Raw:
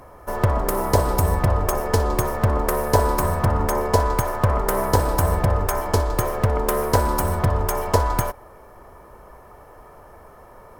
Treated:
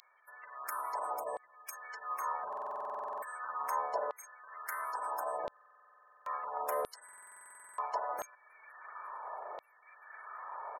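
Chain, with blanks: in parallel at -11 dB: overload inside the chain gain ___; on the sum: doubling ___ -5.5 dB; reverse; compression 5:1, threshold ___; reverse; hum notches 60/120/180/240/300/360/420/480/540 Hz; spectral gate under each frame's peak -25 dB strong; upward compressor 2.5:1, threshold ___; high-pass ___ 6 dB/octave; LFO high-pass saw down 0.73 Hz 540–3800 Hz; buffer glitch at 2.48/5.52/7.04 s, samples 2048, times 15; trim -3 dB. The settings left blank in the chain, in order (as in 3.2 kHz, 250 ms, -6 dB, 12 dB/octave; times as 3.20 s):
20 dB, 37 ms, -30 dBFS, -47 dBFS, 400 Hz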